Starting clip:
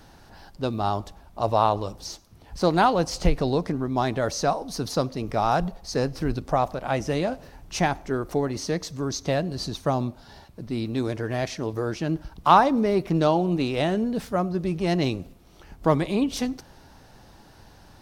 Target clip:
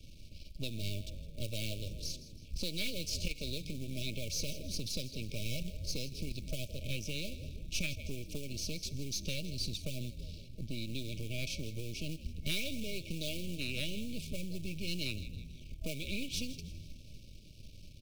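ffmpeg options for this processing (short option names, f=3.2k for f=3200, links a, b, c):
-filter_complex "[0:a]aeval=exprs='if(lt(val(0),0),0.251*val(0),val(0))':c=same,asplit=5[a][b][c][d][e];[b]adelay=161,afreqshift=-81,volume=-16dB[f];[c]adelay=322,afreqshift=-162,volume=-22.4dB[g];[d]adelay=483,afreqshift=-243,volume=-28.8dB[h];[e]adelay=644,afreqshift=-324,volume=-35.1dB[i];[a][f][g][h][i]amix=inputs=5:normalize=0,acrossover=split=260[j][k];[j]acompressor=threshold=-27dB:ratio=6[l];[l][k]amix=inputs=2:normalize=0,highshelf=f=5k:g=-10.5,asplit=2[m][n];[n]acrusher=bits=4:mode=log:mix=0:aa=0.000001,volume=-7.5dB[o];[m][o]amix=inputs=2:normalize=0,afftfilt=real='re*(1-between(b*sr/4096,640,2200))':imag='im*(1-between(b*sr/4096,640,2200))':win_size=4096:overlap=0.75,acrossover=split=1200[p][q];[p]acompressor=threshold=-32dB:ratio=6[r];[q]asoftclip=type=tanh:threshold=-29dB[s];[r][s]amix=inputs=2:normalize=0,equalizer=f=490:w=0.51:g=-14.5,volume=2.5dB"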